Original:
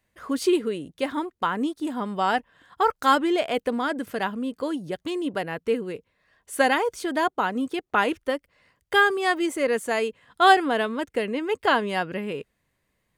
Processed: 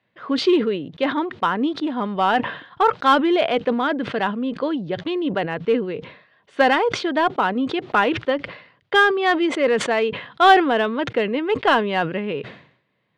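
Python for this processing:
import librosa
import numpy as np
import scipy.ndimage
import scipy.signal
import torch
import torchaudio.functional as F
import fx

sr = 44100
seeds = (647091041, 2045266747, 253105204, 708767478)

p1 = scipy.signal.sosfilt(scipy.signal.ellip(3, 1.0, 60, [120.0, 3700.0], 'bandpass', fs=sr, output='sos'), x)
p2 = np.clip(10.0 ** (19.5 / 20.0) * p1, -1.0, 1.0) / 10.0 ** (19.5 / 20.0)
p3 = p1 + (p2 * 10.0 ** (-7.0 / 20.0))
p4 = fx.sustainer(p3, sr, db_per_s=97.0)
y = p4 * 10.0 ** (2.0 / 20.0)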